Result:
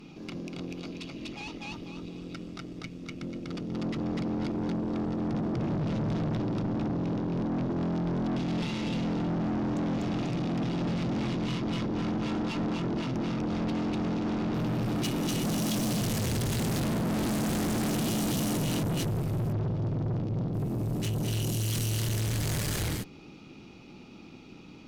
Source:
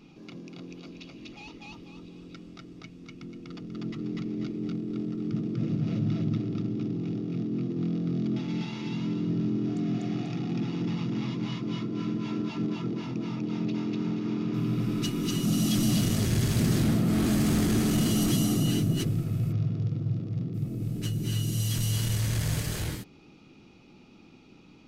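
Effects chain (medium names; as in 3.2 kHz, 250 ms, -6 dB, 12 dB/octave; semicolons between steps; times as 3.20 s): valve stage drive 36 dB, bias 0.65; trim +8.5 dB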